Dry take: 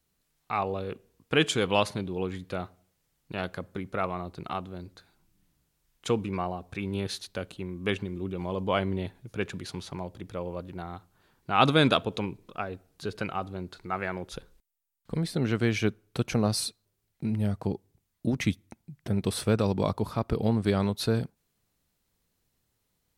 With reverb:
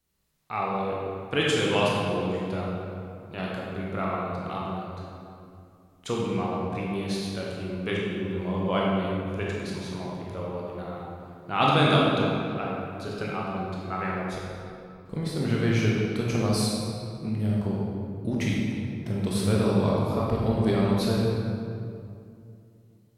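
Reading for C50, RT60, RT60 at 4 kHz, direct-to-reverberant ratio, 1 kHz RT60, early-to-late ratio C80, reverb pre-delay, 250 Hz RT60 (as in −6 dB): −2.0 dB, 2.6 s, 1.5 s, −4.5 dB, 2.4 s, 0.0 dB, 17 ms, 3.1 s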